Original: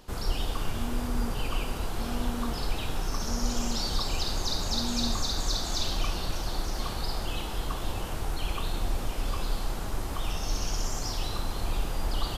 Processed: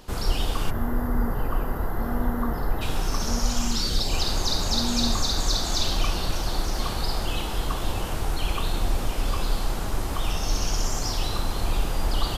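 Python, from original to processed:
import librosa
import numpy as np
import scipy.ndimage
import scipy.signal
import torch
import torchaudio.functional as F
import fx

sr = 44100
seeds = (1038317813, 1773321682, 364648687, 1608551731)

y = fx.spec_box(x, sr, start_s=0.7, length_s=2.11, low_hz=2100.0, high_hz=11000.0, gain_db=-18)
y = fx.peak_eq(y, sr, hz=fx.line((3.39, 260.0), (4.11, 1400.0)), db=-14.5, octaves=0.5, at=(3.39, 4.11), fade=0.02)
y = F.gain(torch.from_numpy(y), 5.0).numpy()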